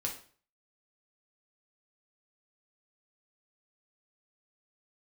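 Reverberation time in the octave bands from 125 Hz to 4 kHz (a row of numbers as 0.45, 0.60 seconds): 0.55, 0.45, 0.45, 0.45, 0.40, 0.40 seconds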